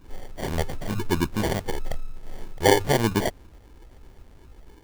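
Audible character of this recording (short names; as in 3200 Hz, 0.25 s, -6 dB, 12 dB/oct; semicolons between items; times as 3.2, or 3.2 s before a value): phasing stages 12, 1 Hz, lowest notch 200–1600 Hz; aliases and images of a low sample rate 1300 Hz, jitter 0%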